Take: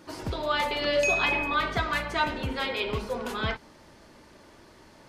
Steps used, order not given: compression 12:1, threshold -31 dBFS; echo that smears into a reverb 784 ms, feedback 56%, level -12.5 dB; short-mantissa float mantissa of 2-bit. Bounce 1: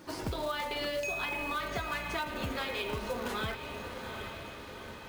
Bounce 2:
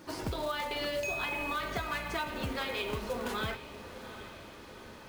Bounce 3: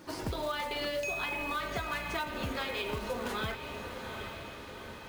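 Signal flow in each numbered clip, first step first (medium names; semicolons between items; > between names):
echo that smears into a reverb > compression > short-mantissa float; compression > short-mantissa float > echo that smears into a reverb; short-mantissa float > echo that smears into a reverb > compression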